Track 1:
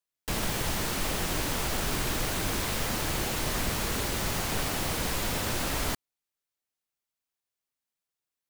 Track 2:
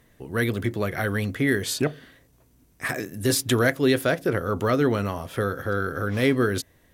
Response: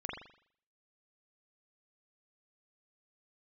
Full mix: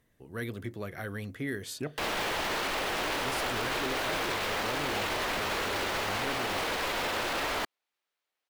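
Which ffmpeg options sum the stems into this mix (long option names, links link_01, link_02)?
-filter_complex "[0:a]acrossover=split=340 4200:gain=0.141 1 0.2[link_01][link_02][link_03];[link_01][link_02][link_03]amix=inputs=3:normalize=0,acontrast=73,adelay=1700,volume=2dB[link_04];[1:a]volume=-12dB[link_05];[link_04][link_05]amix=inputs=2:normalize=0,alimiter=limit=-23dB:level=0:latency=1:release=12"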